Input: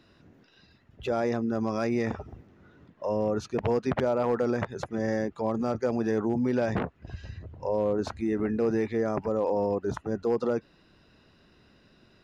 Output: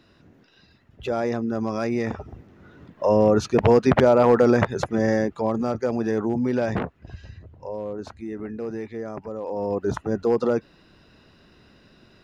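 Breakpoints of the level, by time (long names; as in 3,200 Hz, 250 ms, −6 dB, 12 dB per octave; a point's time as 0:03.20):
0:02.13 +2.5 dB
0:03.07 +10 dB
0:04.66 +10 dB
0:05.76 +3 dB
0:06.77 +3 dB
0:07.81 −5 dB
0:09.43 −5 dB
0:09.85 +5.5 dB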